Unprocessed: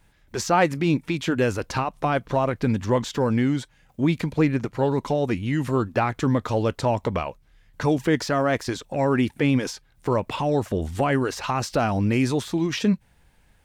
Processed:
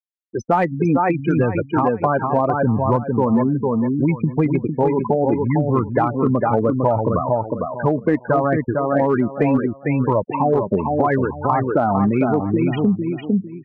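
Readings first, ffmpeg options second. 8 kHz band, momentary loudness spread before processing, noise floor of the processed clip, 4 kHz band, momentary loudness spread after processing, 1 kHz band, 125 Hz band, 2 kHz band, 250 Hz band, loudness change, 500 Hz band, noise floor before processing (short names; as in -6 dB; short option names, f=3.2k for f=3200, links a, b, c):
under -15 dB, 6 LU, -41 dBFS, under -10 dB, 3 LU, +6.5 dB, +4.5 dB, 0.0 dB, +5.0 dB, +5.0 dB, +5.5 dB, -60 dBFS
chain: -filter_complex "[0:a]highpass=f=100:w=0.5412,highpass=f=100:w=1.3066,highshelf=f=2.5k:g=-6,afftfilt=real='re*gte(hypot(re,im),0.1)':imag='im*gte(hypot(re,im),0.1)':win_size=1024:overlap=0.75,asplit=2[a][b];[b]aecho=0:1:453|906|1359:0.562|0.141|0.0351[c];[a][c]amix=inputs=2:normalize=0,flanger=delay=0.8:depth=4.3:regen=50:speed=0.7:shape=sinusoidal,asplit=2[d][e];[e]volume=17.5dB,asoftclip=hard,volume=-17.5dB,volume=-3dB[f];[d][f]amix=inputs=2:normalize=0,adynamicequalizer=threshold=0.02:dfrequency=880:dqfactor=1.4:tfrequency=880:tqfactor=1.4:attack=5:release=100:ratio=0.375:range=1.5:mode=boostabove:tftype=bell,acompressor=threshold=-20dB:ratio=6,volume=7dB"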